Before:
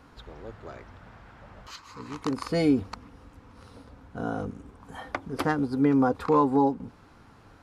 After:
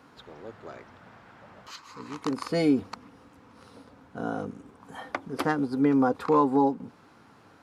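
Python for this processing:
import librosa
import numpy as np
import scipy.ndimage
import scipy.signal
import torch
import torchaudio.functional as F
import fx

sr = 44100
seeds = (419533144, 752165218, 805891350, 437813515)

y = scipy.signal.sosfilt(scipy.signal.butter(2, 150.0, 'highpass', fs=sr, output='sos'), x)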